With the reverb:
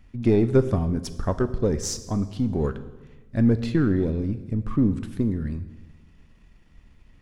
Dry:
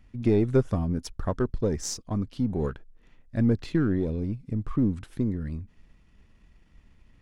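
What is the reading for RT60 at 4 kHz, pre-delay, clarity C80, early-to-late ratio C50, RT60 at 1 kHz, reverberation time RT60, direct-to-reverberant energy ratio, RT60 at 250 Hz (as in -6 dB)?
1.1 s, 6 ms, 15.5 dB, 14.0 dB, 1.1 s, 1.2 s, 11.0 dB, 1.4 s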